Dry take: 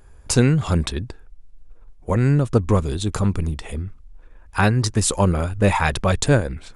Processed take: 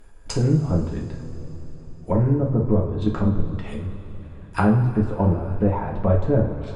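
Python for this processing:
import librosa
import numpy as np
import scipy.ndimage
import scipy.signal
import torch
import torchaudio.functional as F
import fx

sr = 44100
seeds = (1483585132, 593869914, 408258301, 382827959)

y = fx.env_lowpass_down(x, sr, base_hz=710.0, full_db=-17.0)
y = fx.level_steps(y, sr, step_db=10)
y = fx.rev_double_slope(y, sr, seeds[0], early_s=0.41, late_s=4.5, knee_db=-18, drr_db=-2.0)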